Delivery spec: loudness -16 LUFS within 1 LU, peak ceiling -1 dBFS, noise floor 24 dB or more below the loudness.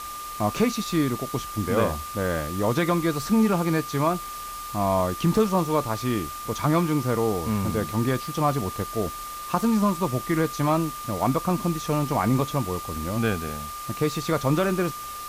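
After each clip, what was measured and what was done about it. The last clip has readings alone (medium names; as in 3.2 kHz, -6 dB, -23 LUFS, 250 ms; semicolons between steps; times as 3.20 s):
steady tone 1.2 kHz; tone level -34 dBFS; noise floor -36 dBFS; noise floor target -49 dBFS; loudness -25.0 LUFS; peak level -8.5 dBFS; loudness target -16.0 LUFS
-> band-stop 1.2 kHz, Q 30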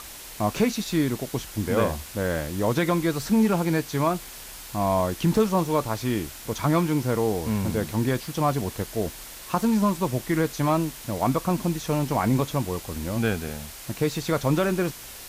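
steady tone not found; noise floor -41 dBFS; noise floor target -50 dBFS
-> noise reduction 9 dB, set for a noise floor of -41 dBFS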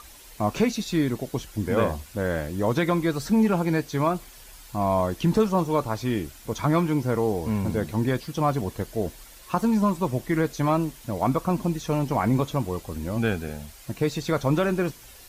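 noise floor -48 dBFS; noise floor target -50 dBFS
-> noise reduction 6 dB, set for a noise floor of -48 dBFS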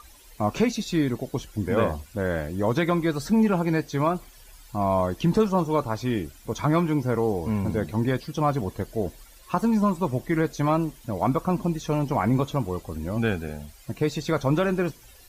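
noise floor -51 dBFS; loudness -25.5 LUFS; peak level -9.0 dBFS; loudness target -16.0 LUFS
-> trim +9.5 dB; peak limiter -1 dBFS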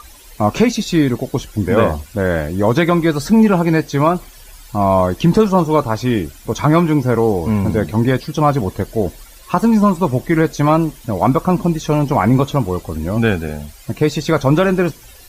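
loudness -16.0 LUFS; peak level -1.0 dBFS; noise floor -41 dBFS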